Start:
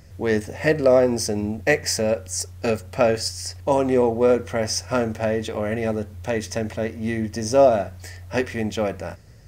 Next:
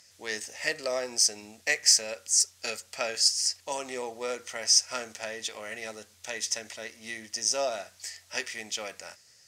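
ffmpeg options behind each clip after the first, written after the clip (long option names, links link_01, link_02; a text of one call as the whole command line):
ffmpeg -i in.wav -af "bandpass=frequency=6200:width_type=q:width=1:csg=0,volume=5.5dB" out.wav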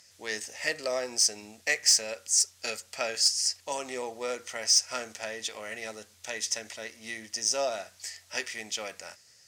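ffmpeg -i in.wav -af "asoftclip=type=tanh:threshold=-11dB" out.wav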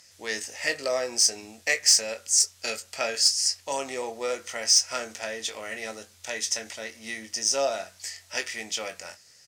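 ffmpeg -i in.wav -filter_complex "[0:a]asplit=2[link_01][link_02];[link_02]adelay=22,volume=-8.5dB[link_03];[link_01][link_03]amix=inputs=2:normalize=0,volume=2.5dB" out.wav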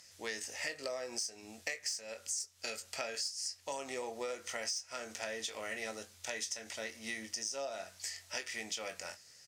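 ffmpeg -i in.wav -af "acompressor=threshold=-32dB:ratio=16,volume=-3.5dB" out.wav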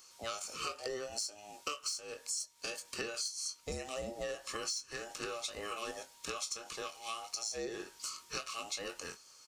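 ffmpeg -i in.wav -af "afftfilt=real='real(if(between(b,1,1008),(2*floor((b-1)/48)+1)*48-b,b),0)':imag='imag(if(between(b,1,1008),(2*floor((b-1)/48)+1)*48-b,b),0)*if(between(b,1,1008),-1,1)':win_size=2048:overlap=0.75" out.wav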